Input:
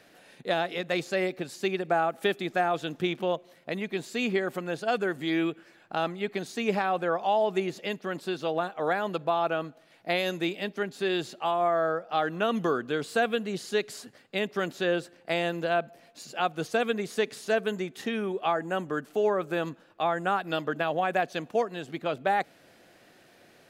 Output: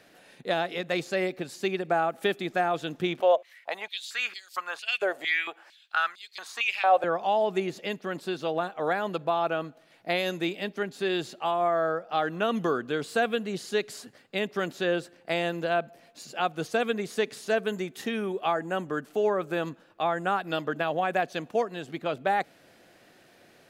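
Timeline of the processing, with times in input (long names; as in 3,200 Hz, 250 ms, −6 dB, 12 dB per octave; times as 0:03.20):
0:03.20–0:07.04: high-pass on a step sequencer 4.4 Hz 610–4,700 Hz
0:17.72–0:18.60: high-shelf EQ 8,700 Hz +6.5 dB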